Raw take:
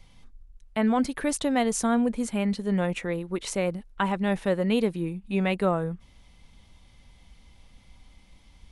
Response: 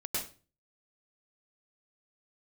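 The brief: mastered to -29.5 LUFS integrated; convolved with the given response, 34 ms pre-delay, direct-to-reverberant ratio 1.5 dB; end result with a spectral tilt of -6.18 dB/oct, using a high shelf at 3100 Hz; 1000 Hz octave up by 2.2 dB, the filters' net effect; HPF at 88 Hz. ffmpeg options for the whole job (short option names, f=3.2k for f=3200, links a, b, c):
-filter_complex "[0:a]highpass=88,equalizer=f=1k:t=o:g=3.5,highshelf=f=3.1k:g=-4,asplit=2[a][b];[1:a]atrim=start_sample=2205,adelay=34[c];[b][c]afir=irnorm=-1:irlink=0,volume=-5.5dB[d];[a][d]amix=inputs=2:normalize=0,volume=-6dB"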